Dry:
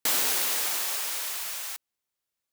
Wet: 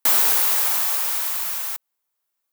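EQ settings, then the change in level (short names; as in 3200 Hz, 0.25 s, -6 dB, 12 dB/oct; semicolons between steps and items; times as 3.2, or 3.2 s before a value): HPF 180 Hz 12 dB/oct; bell 1000 Hz +7.5 dB 1.6 oct; high shelf 11000 Hz +12 dB; 0.0 dB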